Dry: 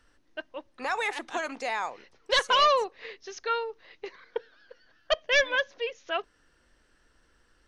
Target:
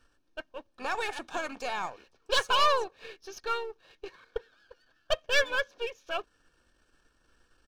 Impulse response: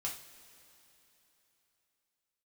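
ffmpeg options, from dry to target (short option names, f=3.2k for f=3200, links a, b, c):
-filter_complex "[0:a]aeval=exprs='if(lt(val(0),0),0.447*val(0),val(0))':c=same,asplit=2[a][b];[b]asetrate=37084,aresample=44100,atempo=1.18921,volume=-15dB[c];[a][c]amix=inputs=2:normalize=0,asuperstop=centerf=2000:order=20:qfactor=7.1"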